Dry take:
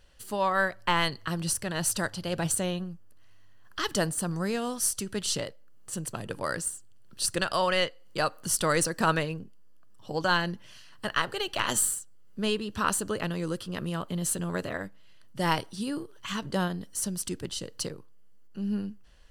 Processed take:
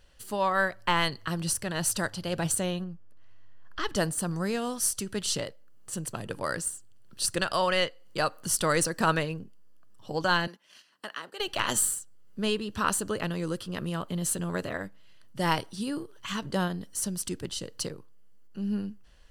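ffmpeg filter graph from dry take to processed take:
-filter_complex "[0:a]asettb=1/sr,asplit=3[s0][s1][s2];[s0]atrim=end=2.844[s3];[s1]atrim=start=2.84:end=3.96,asetpts=PTS-STARTPTS,afade=t=in:d=0.004:c=qsin,afade=t=out:st=1.116:d=0.004:c=qsin,lowpass=f=2700:p=1,asubboost=boost=5.5:cutoff=54[s4];[s2]atrim=start=3.956[s5];[s3][s4]acrossfade=d=0.004:c1=hsin:c2=qsin[s6];[s6][s5]acrossfade=d=0.004:c1=qsin:c2=hsin,asettb=1/sr,asplit=3[s7][s8][s9];[s7]atrim=end=10.474[s10];[s8]atrim=start=10.47:end=11.4,asetpts=PTS-STARTPTS,afade=t=in:d=0.004:c=qsin,afade=t=out:st=0.926:d=0.004:c=qsin,highpass=f=200:w=0.5412,highpass=f=200:w=1.3066,acrossover=split=530|5300[s11][s12][s13];[s11]acompressor=threshold=0.00316:ratio=4[s14];[s12]acompressor=threshold=0.0126:ratio=4[s15];[s13]acompressor=threshold=0.00141:ratio=4[s16];[s14][s15][s16]amix=inputs=3:normalize=0,agate=range=0.355:threshold=0.00224:ratio=16:release=100:detection=peak[s17];[s9]atrim=start=11.396[s18];[s10][s17]acrossfade=d=0.004:c1=hsin:c2=qsin[s19];[s19][s18]acrossfade=d=0.004:c1=qsin:c2=hsin"

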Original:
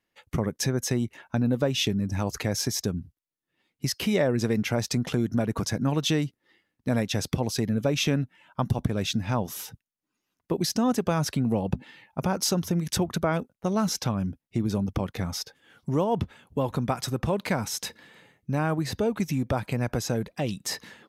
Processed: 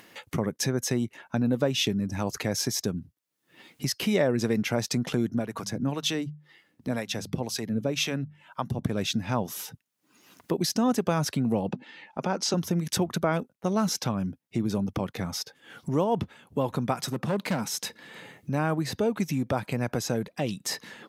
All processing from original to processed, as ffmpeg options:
-filter_complex "[0:a]asettb=1/sr,asplit=3[s0][s1][s2];[s0]atrim=end=5.304[s3];[s1]atrim=start=5.3:end=8.84,asetpts=PTS-STARTPTS,afade=t=in:d=0.004:c=qsin,afade=t=out:st=3.536:d=0.004:c=qsin,bandreject=f=50:t=h:w=6,bandreject=f=100:t=h:w=6,bandreject=f=150:t=h:w=6,bandreject=f=200:t=h:w=6,acrossover=split=560[s4][s5];[s4]aeval=exprs='val(0)*(1-0.7/2+0.7/2*cos(2*PI*2*n/s))':c=same[s6];[s5]aeval=exprs='val(0)*(1-0.7/2-0.7/2*cos(2*PI*2*n/s))':c=same[s7];[s6][s7]amix=inputs=2:normalize=0[s8];[s2]atrim=start=8.836[s9];[s3][s8]acrossfade=d=0.004:c1=hsin:c2=qsin[s10];[s10][s9]acrossfade=d=0.004:c1=qsin:c2=hsin,asettb=1/sr,asplit=3[s11][s12][s13];[s11]atrim=end=11.694[s14];[s12]atrim=start=11.69:end=12.54,asetpts=PTS-STARTPTS,afade=t=in:d=0.004:c=qsin,afade=t=out:st=0.846:d=0.004:c=qsin,acrossover=split=160 7700:gain=0.0631 1 0.0631[s15][s16][s17];[s15][s16][s17]amix=inputs=3:normalize=0,bandreject=f=1100:w=21[s18];[s13]atrim=start=12.536[s19];[s14][s18]acrossfade=d=0.004:c1=hsin:c2=qsin[s20];[s20][s19]acrossfade=d=0.004:c1=qsin:c2=hsin,asettb=1/sr,asplit=3[s21][s22][s23];[s21]atrim=end=16.994[s24];[s22]atrim=start=16.99:end=17.81,asetpts=PTS-STARTPTS,afade=t=in:d=0.004:c=qsin,afade=t=out:st=0.816:d=0.004:c=qsin,lowshelf=f=100:t=q:w=1.5:g=-13.5,volume=12.6,asoftclip=hard,volume=0.0794[s25];[s23]atrim=start=17.806[s26];[s24][s25]acrossfade=d=0.004:c1=hsin:c2=qsin[s27];[s27][s26]acrossfade=d=0.004:c1=qsin:c2=hsin,highpass=120,acompressor=mode=upward:threshold=0.0224:ratio=2.5"

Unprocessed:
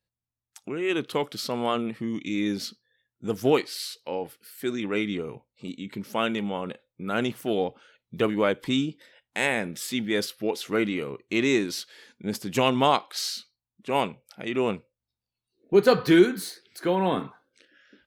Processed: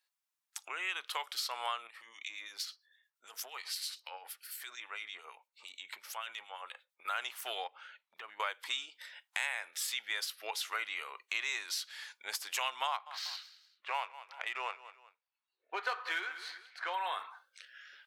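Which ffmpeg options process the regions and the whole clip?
-filter_complex "[0:a]asettb=1/sr,asplit=3[s0][s1][s2];[s0]atrim=end=1.874[s3];[s1]atrim=start=1.87:end=7.05,asetpts=PTS-STARTPTS,afade=t=in:d=0.004:c=qsin,afade=t=out:st=5.176:d=0.004:c=qsin,acompressor=threshold=0.02:ratio=6:attack=3.2:release=140:knee=1:detection=peak,acrossover=split=2000[s4][s5];[s4]aeval=exprs='val(0)*(1-0.7/2+0.7/2*cos(2*PI*8.8*n/s))':c=same[s6];[s5]aeval=exprs='val(0)*(1-0.7/2-0.7/2*cos(2*PI*8.8*n/s))':c=same[s7];[s6][s7]amix=inputs=2:normalize=0[s8];[s2]atrim=start=7.046[s9];[s3][s8]acrossfade=d=0.004:c1=hsin:c2=qsin[s10];[s10][s9]acrossfade=d=0.004:c1=qsin:c2=hsin,asettb=1/sr,asplit=3[s11][s12][s13];[s11]atrim=end=7.674[s14];[s12]atrim=start=7.67:end=8.4,asetpts=PTS-STARTPTS,afade=t=in:d=0.004:c=qsin,afade=t=out:st=0.726:d=0.004:c=qsin,bass=f=250:g=12,treble=f=4000:g=-12,acompressor=threshold=0.0158:ratio=6:attack=3.2:release=140:knee=1:detection=peak[s15];[s13]atrim=start=8.396[s16];[s14][s15]acrossfade=d=0.004:c1=hsin:c2=qsin[s17];[s17][s16]acrossfade=d=0.004:c1=qsin:c2=hsin,asettb=1/sr,asplit=3[s18][s19][s20];[s18]atrim=end=12.874[s21];[s19]atrim=start=12.87:end=16.94,asetpts=PTS-STARTPTS,afade=t=in:d=0.004:c=qsin,afade=t=out:st=4.066:d=0.004:c=qsin,bass=f=250:g=-7,treble=f=4000:g=-13,adynamicsmooth=sensitivity=7:basefreq=4100,aecho=1:1:191|382:0.1|0.03,atrim=end_sample=179487[s22];[s20]atrim=start=16.936[s23];[s21][s22]acrossfade=d=0.004:c1=hsin:c2=qsin[s24];[s24][s23]acrossfade=d=0.004:c1=qsin:c2=hsin,highpass=f=890:w=0.5412,highpass=f=890:w=1.3066,acompressor=threshold=0.00794:ratio=3,volume=1.88"

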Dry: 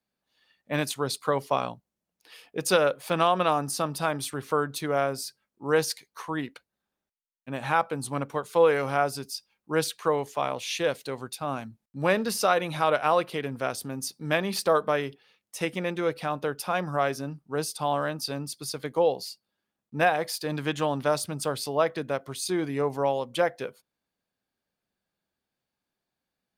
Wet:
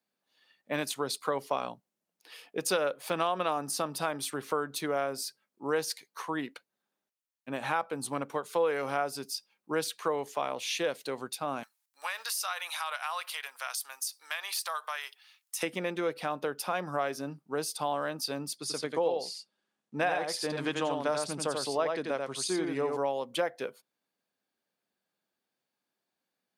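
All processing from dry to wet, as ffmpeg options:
-filter_complex "[0:a]asettb=1/sr,asplit=3[s0][s1][s2];[s0]atrim=end=11.634[s3];[s1]atrim=start=11.63:end=15.63,asetpts=PTS-STARTPTS,afade=t=in:d=0.004:c=qsin,afade=t=out:st=3.996:d=0.004:c=qsin,highpass=f=910:w=0.5412,highpass=f=910:w=1.3066,highshelf=f=4300:g=10.5,acompressor=threshold=0.0251:ratio=2.5:attack=3.2:release=140:knee=1:detection=peak[s4];[s2]atrim=start=15.626[s5];[s3][s4]acrossfade=d=0.004:c1=hsin:c2=qsin[s6];[s6][s5]acrossfade=d=0.004:c1=qsin:c2=hsin,asettb=1/sr,asplit=3[s7][s8][s9];[s7]atrim=end=18.574[s10];[s8]atrim=start=18.57:end=22.97,asetpts=PTS-STARTPTS,afade=t=in:d=0.004:c=qsin,afade=t=out:st=4.396:d=0.004:c=qsin,lowpass=f=10000:w=0.5412,lowpass=f=10000:w=1.3066,aecho=1:1:88:0.596,atrim=end_sample=194040[s11];[s9]atrim=start=22.966[s12];[s10][s11]acrossfade=d=0.004:c1=hsin:c2=qsin[s13];[s13][s12]acrossfade=d=0.004:c1=qsin:c2=hsin,highpass=210,acompressor=threshold=0.0316:ratio=2"

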